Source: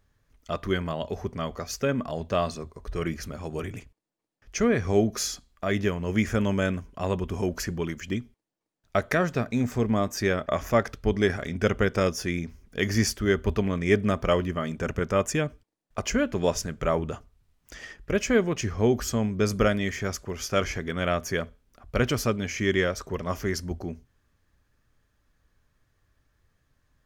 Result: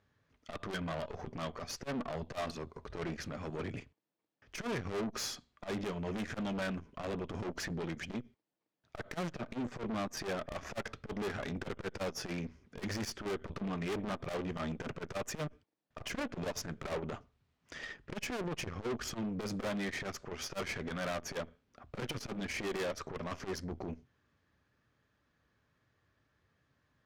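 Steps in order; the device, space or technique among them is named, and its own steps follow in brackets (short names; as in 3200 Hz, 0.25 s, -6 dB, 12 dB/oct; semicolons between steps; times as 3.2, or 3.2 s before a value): valve radio (BPF 110–4500 Hz; tube stage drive 35 dB, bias 0.7; core saturation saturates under 180 Hz); gain +2.5 dB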